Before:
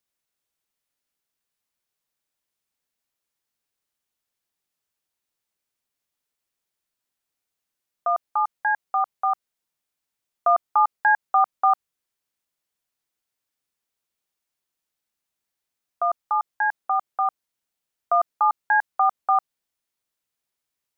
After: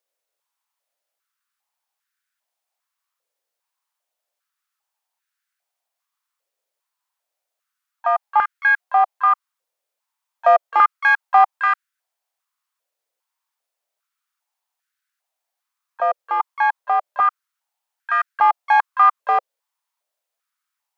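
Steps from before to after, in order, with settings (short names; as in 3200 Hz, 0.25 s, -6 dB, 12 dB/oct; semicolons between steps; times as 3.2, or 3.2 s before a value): one diode to ground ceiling -16 dBFS; harmoniser +5 st -14 dB; stepped high-pass 2.5 Hz 530–1500 Hz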